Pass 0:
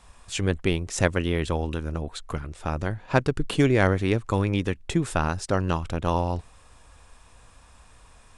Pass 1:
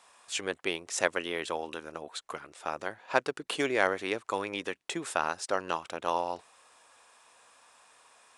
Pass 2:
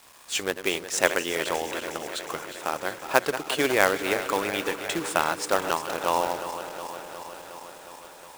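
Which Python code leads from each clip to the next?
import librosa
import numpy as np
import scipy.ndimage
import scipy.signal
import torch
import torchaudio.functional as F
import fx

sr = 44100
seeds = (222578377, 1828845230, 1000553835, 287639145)

y1 = scipy.signal.sosfilt(scipy.signal.butter(2, 510.0, 'highpass', fs=sr, output='sos'), x)
y1 = y1 * 10.0 ** (-2.0 / 20.0)
y2 = fx.reverse_delay_fb(y1, sr, ms=181, feedback_pct=84, wet_db=-12.0)
y2 = fx.quant_companded(y2, sr, bits=4)
y2 = y2 * 10.0 ** (5.0 / 20.0)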